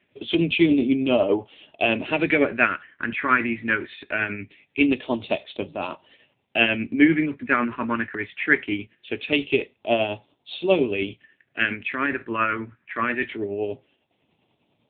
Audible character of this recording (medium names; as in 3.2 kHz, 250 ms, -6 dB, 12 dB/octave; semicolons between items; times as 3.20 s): phasing stages 4, 0.22 Hz, lowest notch 710–1600 Hz; tremolo triangle 10 Hz, depth 50%; AMR-NB